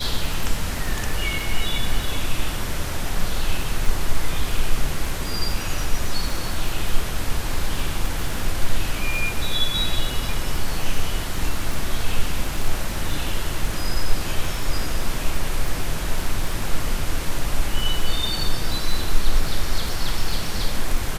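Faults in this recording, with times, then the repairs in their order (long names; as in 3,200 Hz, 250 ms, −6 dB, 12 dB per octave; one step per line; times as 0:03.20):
surface crackle 22 per second −24 dBFS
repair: click removal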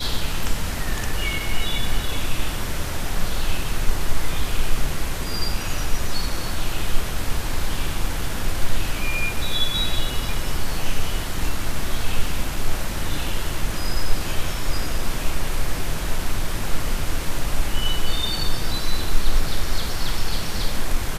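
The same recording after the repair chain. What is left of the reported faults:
none of them is left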